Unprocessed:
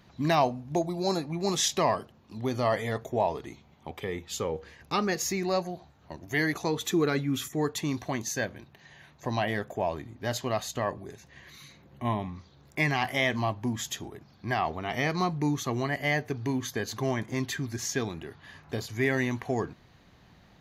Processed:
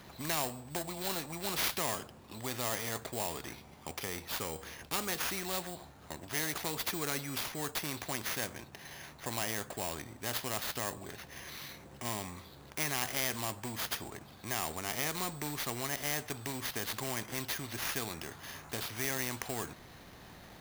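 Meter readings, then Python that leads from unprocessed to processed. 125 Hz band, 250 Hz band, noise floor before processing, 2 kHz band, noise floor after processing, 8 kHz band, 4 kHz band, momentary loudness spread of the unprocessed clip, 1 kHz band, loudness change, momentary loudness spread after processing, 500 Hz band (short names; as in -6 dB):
-11.0 dB, -11.5 dB, -58 dBFS, -6.0 dB, -54 dBFS, -1.0 dB, -2.0 dB, 16 LU, -8.5 dB, -6.0 dB, 12 LU, -11.0 dB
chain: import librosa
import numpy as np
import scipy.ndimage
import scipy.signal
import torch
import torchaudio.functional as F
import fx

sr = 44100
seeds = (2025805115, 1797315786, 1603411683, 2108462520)

y = fx.sample_hold(x, sr, seeds[0], rate_hz=8100.0, jitter_pct=0)
y = fx.spectral_comp(y, sr, ratio=2.0)
y = y * librosa.db_to_amplitude(-3.0)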